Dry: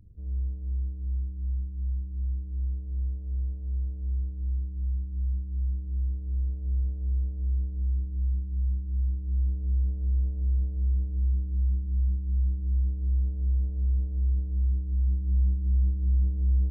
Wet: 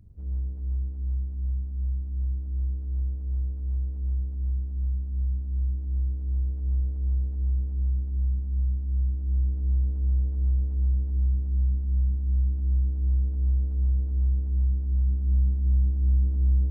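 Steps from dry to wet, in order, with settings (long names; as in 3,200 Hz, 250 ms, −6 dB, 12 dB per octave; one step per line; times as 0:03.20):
lower of the sound and its delayed copy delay 0.47 ms
convolution reverb RT60 3.2 s, pre-delay 13 ms, DRR 11 dB
level +1.5 dB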